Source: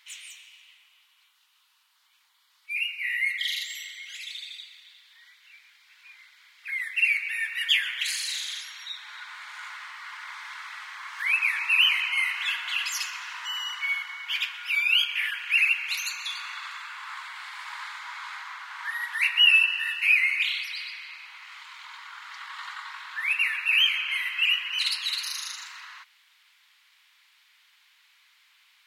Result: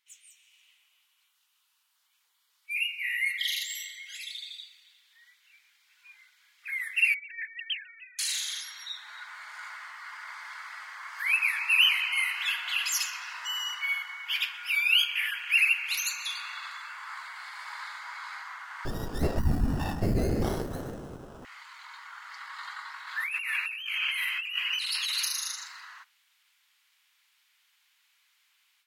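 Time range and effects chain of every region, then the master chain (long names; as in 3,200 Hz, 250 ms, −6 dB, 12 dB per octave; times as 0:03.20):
0:07.14–0:08.19: three sine waves on the formant tracks + high-pass filter 1,000 Hz + first difference
0:18.85–0:21.45: downward compressor 2 to 1, threshold −23 dBFS + windowed peak hold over 17 samples
0:23.07–0:25.26: high-pass filter 640 Hz 6 dB per octave + compressor whose output falls as the input rises −31 dBFS
whole clip: noise reduction from a noise print of the clip's start 7 dB; graphic EQ with 10 bands 1,000 Hz −7 dB, 2,000 Hz −6 dB, 4,000 Hz −6 dB; automatic gain control gain up to 12 dB; level −6 dB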